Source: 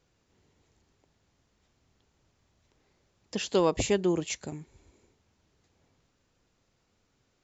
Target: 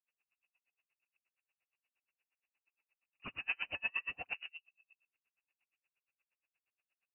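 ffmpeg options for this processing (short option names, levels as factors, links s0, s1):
-filter_complex "[0:a]highpass=220,afftdn=nr=17:nf=-53,equalizer=f=390:w=0.96:g=7.5,acompressor=threshold=0.0631:ratio=10,aresample=16000,acrusher=bits=6:mode=log:mix=0:aa=0.000001,aresample=44100,asoftclip=type=hard:threshold=0.0211,asplit=2[s0][s1];[s1]aecho=0:1:68|73|135|136|171:0.668|0.501|0.133|0.178|0.531[s2];[s0][s2]amix=inputs=2:normalize=0,lowpass=f=2500:t=q:w=0.5098,lowpass=f=2500:t=q:w=0.6013,lowpass=f=2500:t=q:w=0.9,lowpass=f=2500:t=q:w=2.563,afreqshift=-2900,asetrate=45938,aresample=44100,aeval=exprs='val(0)*pow(10,-39*(0.5-0.5*cos(2*PI*8.5*n/s))/20)':c=same,volume=1.12"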